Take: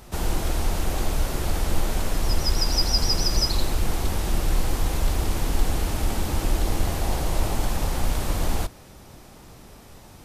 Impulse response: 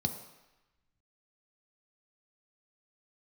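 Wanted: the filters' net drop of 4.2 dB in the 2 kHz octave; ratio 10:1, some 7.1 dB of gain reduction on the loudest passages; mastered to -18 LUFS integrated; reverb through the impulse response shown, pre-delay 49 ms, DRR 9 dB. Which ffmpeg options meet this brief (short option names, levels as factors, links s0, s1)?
-filter_complex "[0:a]equalizer=f=2000:t=o:g=-5.5,acompressor=threshold=0.0794:ratio=10,asplit=2[s0][s1];[1:a]atrim=start_sample=2205,adelay=49[s2];[s1][s2]afir=irnorm=-1:irlink=0,volume=0.237[s3];[s0][s3]amix=inputs=2:normalize=0,volume=3.98"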